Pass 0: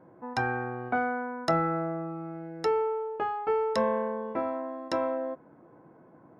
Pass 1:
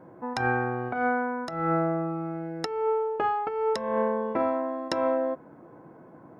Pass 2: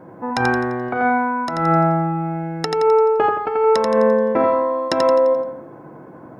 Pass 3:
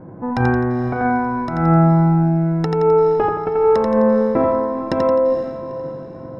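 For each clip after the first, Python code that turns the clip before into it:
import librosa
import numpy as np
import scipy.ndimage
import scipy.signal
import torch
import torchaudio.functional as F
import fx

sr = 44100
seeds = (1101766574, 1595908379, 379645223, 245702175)

y1 = fx.over_compress(x, sr, threshold_db=-29.0, ratio=-0.5)
y1 = y1 * 10.0 ** (4.0 / 20.0)
y2 = fx.echo_feedback(y1, sr, ms=86, feedback_pct=44, wet_db=-4)
y2 = y2 * 10.0 ** (8.0 / 20.0)
y3 = fx.riaa(y2, sr, side='playback')
y3 = fx.echo_diffused(y3, sr, ms=456, feedback_pct=45, wet_db=-12.0)
y3 = y3 * 10.0 ** (-2.5 / 20.0)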